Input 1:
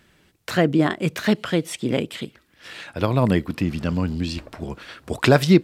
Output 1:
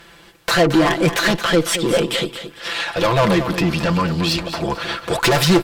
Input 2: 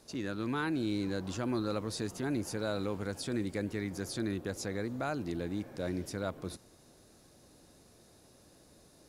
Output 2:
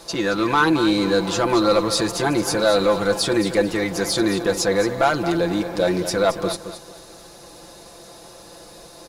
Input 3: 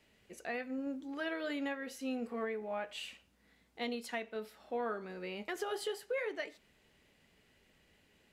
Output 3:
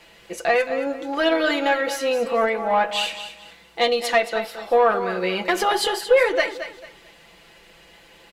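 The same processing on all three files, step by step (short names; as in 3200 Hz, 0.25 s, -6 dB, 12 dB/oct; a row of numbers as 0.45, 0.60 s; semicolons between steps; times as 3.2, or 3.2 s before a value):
graphic EQ 125/250/500/1000/4000 Hz -5/-5/+3/+6/+4 dB; tube stage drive 24 dB, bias 0.2; comb 5.9 ms, depth 68%; feedback echo 0.222 s, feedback 28%, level -11 dB; normalise peaks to -6 dBFS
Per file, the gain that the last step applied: +10.5, +15.0, +15.5 dB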